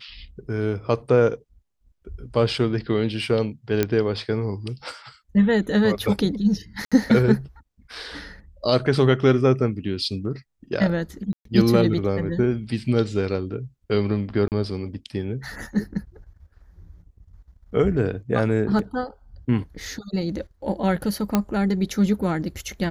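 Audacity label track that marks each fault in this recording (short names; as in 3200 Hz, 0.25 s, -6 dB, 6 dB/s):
3.830000	3.830000	pop -7 dBFS
6.850000	6.920000	gap 66 ms
11.330000	11.450000	gap 0.123 s
14.480000	14.520000	gap 38 ms
18.790000	18.790000	gap 2.1 ms
21.350000	21.350000	pop -6 dBFS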